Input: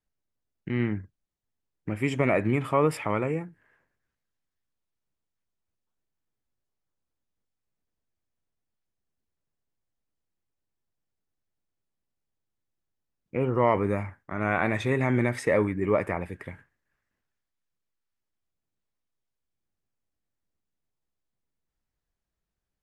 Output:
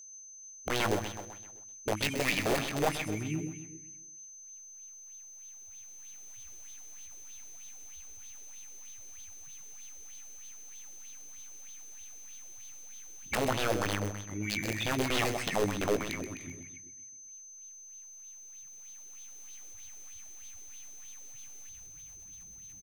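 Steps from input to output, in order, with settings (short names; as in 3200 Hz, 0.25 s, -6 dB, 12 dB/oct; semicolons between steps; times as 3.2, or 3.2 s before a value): bin magnitudes rounded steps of 30 dB; recorder AGC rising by 9.3 dB/s; elliptic band-stop 320–2300 Hz, stop band 40 dB; high shelf 8000 Hz +5.5 dB; in parallel at -8 dB: sample-rate reducer 9300 Hz, jitter 0%; on the sum: dynamic EQ 120 Hz, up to +3 dB, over -40 dBFS, Q 6; wrapped overs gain 18.5 dB; doubler 19 ms -10.5 dB; on a send: feedback echo 0.129 s, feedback 48%, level -7 dB; on the sum: whine 6200 Hz -39 dBFS; LFO bell 3.2 Hz 390–3700 Hz +12 dB; gain -8.5 dB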